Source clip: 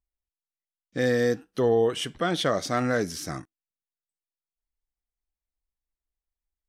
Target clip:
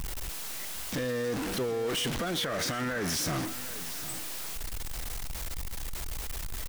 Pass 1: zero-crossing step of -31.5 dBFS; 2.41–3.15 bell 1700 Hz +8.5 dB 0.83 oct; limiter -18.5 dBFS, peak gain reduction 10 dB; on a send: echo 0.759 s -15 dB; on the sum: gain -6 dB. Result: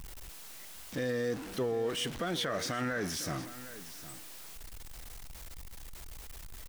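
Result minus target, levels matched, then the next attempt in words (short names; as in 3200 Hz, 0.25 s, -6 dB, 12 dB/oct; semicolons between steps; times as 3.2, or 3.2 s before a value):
zero-crossing step: distortion -8 dB
zero-crossing step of -21 dBFS; 2.41–3.15 bell 1700 Hz +8.5 dB 0.83 oct; limiter -18.5 dBFS, peak gain reduction 11 dB; on a send: echo 0.759 s -15 dB; on the sum: gain -6 dB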